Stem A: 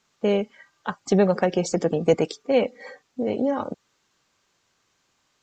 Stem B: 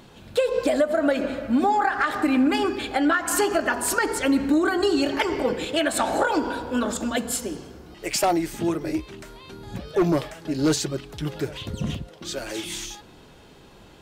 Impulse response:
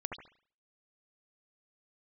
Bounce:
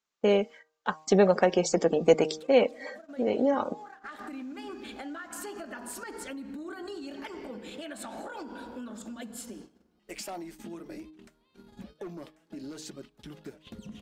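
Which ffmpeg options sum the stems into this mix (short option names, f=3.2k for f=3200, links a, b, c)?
-filter_complex "[0:a]volume=0dB,asplit=2[a][b];[1:a]equalizer=f=210:w=2.4:g=13.5,alimiter=limit=-15.5dB:level=0:latency=1:release=200,acompressor=threshold=-29dB:ratio=2.5,adelay=2050,volume=-9dB[c];[b]apad=whole_len=708685[d];[c][d]sidechaincompress=threshold=-32dB:ratio=3:attack=20:release=685[e];[a][e]amix=inputs=2:normalize=0,agate=range=-18dB:threshold=-43dB:ratio=16:detection=peak,equalizer=f=110:t=o:w=1.6:g=-10,bandreject=f=155.9:t=h:w=4,bandreject=f=311.8:t=h:w=4,bandreject=f=467.7:t=h:w=4,bandreject=f=623.6:t=h:w=4,bandreject=f=779.5:t=h:w=4,bandreject=f=935.4:t=h:w=4,bandreject=f=1.0913k:t=h:w=4"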